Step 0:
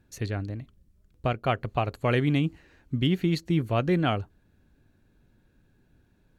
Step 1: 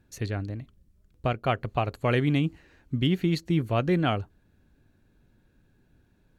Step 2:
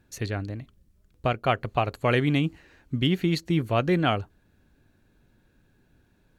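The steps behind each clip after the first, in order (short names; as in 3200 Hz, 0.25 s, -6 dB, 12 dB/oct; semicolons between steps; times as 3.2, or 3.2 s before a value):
nothing audible
low shelf 380 Hz -4 dB; gain +3.5 dB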